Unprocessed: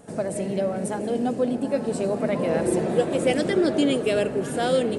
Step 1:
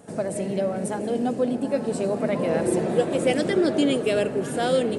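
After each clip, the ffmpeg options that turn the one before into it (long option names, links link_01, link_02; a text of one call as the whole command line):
ffmpeg -i in.wav -af "highpass=69" out.wav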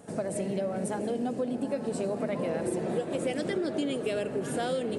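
ffmpeg -i in.wav -af "acompressor=threshold=-25dB:ratio=6,volume=-2dB" out.wav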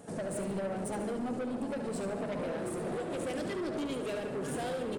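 ffmpeg -i in.wav -filter_complex "[0:a]asoftclip=type=tanh:threshold=-32.5dB,asplit=2[link_01][link_02];[link_02]aecho=0:1:72|144|216|288|360|432:0.355|0.177|0.0887|0.0444|0.0222|0.0111[link_03];[link_01][link_03]amix=inputs=2:normalize=0" out.wav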